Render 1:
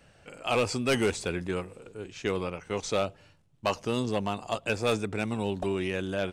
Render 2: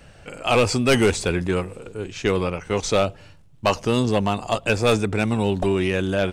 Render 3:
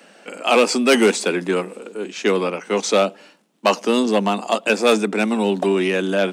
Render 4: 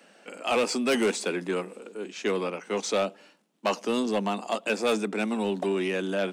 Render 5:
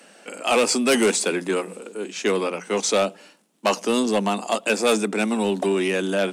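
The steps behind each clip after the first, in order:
low shelf 72 Hz +9 dB; in parallel at -11.5 dB: soft clip -29.5 dBFS, distortion -8 dB; on the sum: gain +7 dB
steep high-pass 190 Hz 72 dB/oct; gain +3.5 dB
soft clip -8 dBFS, distortion -18 dB; gain -8 dB
bell 9800 Hz +8 dB 1.2 oct; notches 60/120/180 Hz; gain +5.5 dB

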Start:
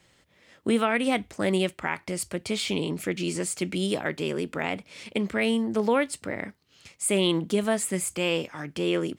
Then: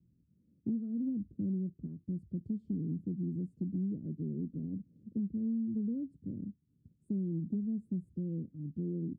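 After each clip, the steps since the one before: inverse Chebyshev low-pass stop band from 790 Hz, stop band 60 dB; low shelf 100 Hz -10.5 dB; compressor, threshold -35 dBFS, peak gain reduction 9 dB; gain +3.5 dB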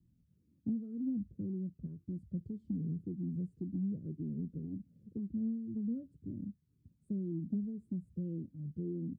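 cascading flanger falling 1.9 Hz; gain +3.5 dB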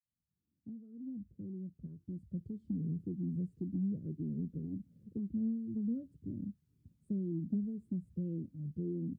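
opening faded in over 3.06 s; gain +1 dB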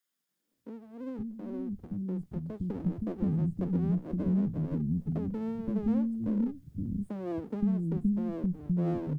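minimum comb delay 0.59 ms; in parallel at -1.5 dB: compressor, threshold -44 dBFS, peak gain reduction 13 dB; on the sum: bands offset in time highs, lows 0.52 s, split 270 Hz; gain +7.5 dB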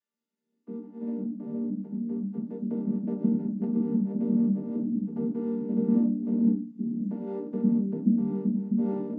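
chord vocoder minor triad, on G3; shoebox room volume 140 m³, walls furnished, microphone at 1.4 m; gain +3 dB

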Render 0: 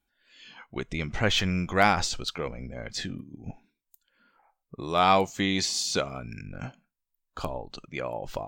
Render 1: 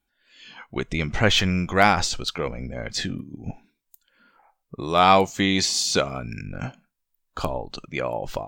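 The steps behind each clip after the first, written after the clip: AGC gain up to 4.5 dB; gain +1.5 dB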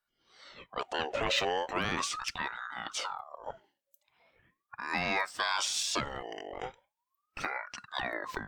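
limiter -12 dBFS, peak gain reduction 10.5 dB; bell 2400 Hz +3.5 dB 0.77 oct; ring modulator with a swept carrier 1000 Hz, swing 45%, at 0.39 Hz; gain -6 dB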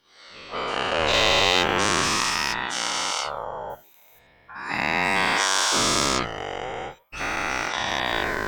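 spectral dilation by 0.48 s; gain +2 dB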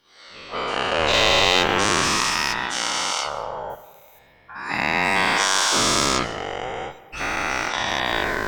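digital reverb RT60 1.4 s, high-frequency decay 0.65×, pre-delay 90 ms, DRR 15 dB; gain +2 dB

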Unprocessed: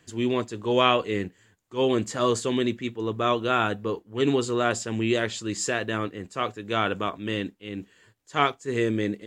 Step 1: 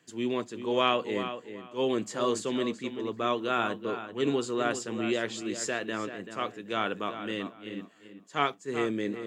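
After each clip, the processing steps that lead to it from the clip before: HPF 140 Hz 24 dB/oct; on a send: darkening echo 0.385 s, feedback 21%, low-pass 4000 Hz, level -10 dB; on the sum: gain -5 dB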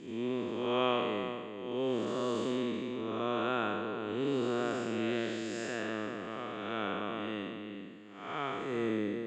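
time blur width 0.291 s; air absorption 74 m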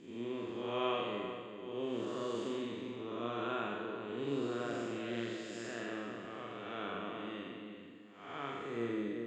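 flutter echo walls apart 7.3 m, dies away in 0.57 s; gain -7 dB

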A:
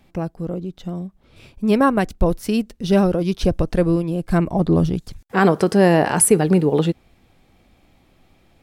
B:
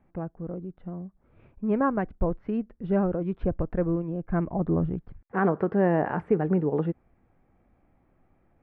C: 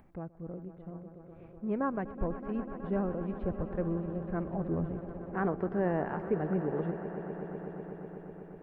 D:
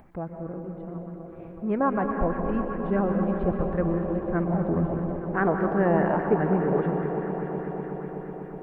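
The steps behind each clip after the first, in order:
LPF 1800 Hz 24 dB/oct; gain -8.5 dB
upward compressor, threshold -43 dBFS; swelling echo 0.124 s, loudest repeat 5, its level -15 dB; gain -7.5 dB
on a send at -4 dB: reverb RT60 2.9 s, pre-delay 0.114 s; on the sum: LFO bell 4.9 Hz 640–1900 Hz +6 dB; gain +6 dB

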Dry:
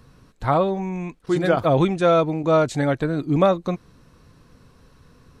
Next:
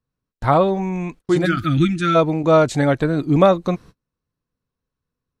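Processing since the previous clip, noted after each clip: gate -42 dBFS, range -35 dB; spectral gain 1.46–2.15, 350–1200 Hz -28 dB; gain +4 dB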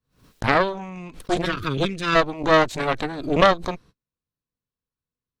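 added harmonics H 4 -6 dB, 7 -25 dB, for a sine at -1 dBFS; bell 3600 Hz +4 dB 1.2 oct; backwards sustainer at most 140 dB/s; gain -6 dB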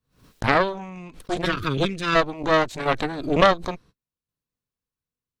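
tremolo saw down 0.7 Hz, depth 50%; gain +1.5 dB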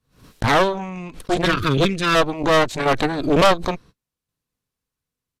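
hard clip -16 dBFS, distortion -7 dB; downsampling 32000 Hz; gain +6.5 dB

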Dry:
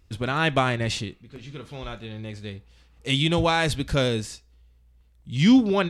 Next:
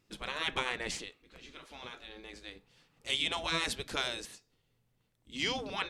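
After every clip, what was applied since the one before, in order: spectral gate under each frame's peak -10 dB weak; gain -4.5 dB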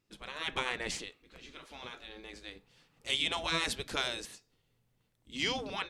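AGC gain up to 7 dB; gain -6.5 dB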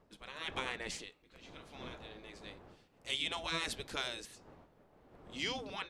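wind noise 620 Hz -52 dBFS; gain -5 dB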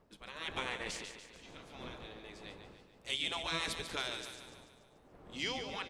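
feedback echo 0.145 s, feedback 53%, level -8.5 dB

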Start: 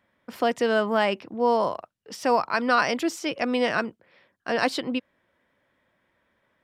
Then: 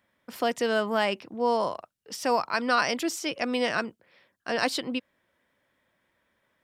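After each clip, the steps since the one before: high shelf 4000 Hz +8.5 dB; gain -3.5 dB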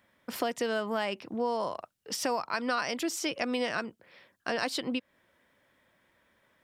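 compressor 3:1, threshold -34 dBFS, peak gain reduction 12 dB; gain +4 dB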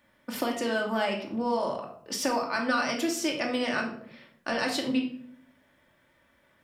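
shoebox room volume 970 m³, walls furnished, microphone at 2.5 m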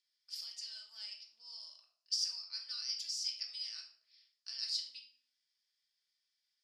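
ladder band-pass 5100 Hz, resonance 80%; gain +1 dB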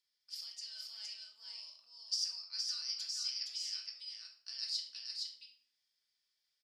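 echo 0.466 s -3.5 dB; gain -1 dB

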